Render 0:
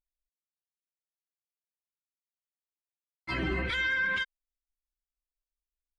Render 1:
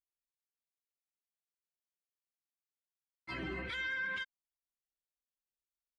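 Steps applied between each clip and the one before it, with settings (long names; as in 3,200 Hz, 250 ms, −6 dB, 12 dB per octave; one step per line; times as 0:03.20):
high-pass filter 94 Hz 6 dB per octave
level −8.5 dB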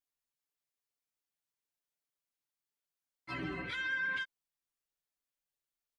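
comb filter 6.9 ms, depth 67%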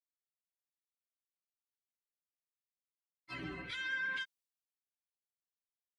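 multiband upward and downward expander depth 70%
level −4.5 dB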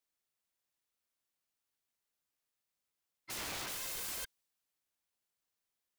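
wrap-around overflow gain 44 dB
level +7.5 dB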